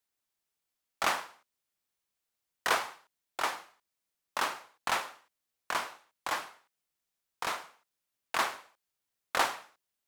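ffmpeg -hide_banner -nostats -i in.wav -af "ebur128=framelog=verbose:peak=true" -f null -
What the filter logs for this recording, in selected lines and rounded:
Integrated loudness:
  I:         -33.8 LUFS
  Threshold: -44.9 LUFS
Loudness range:
  LRA:         3.0 LU
  Threshold: -56.7 LUFS
  LRA low:   -38.3 LUFS
  LRA high:  -35.2 LUFS
True peak:
  Peak:      -12.4 dBFS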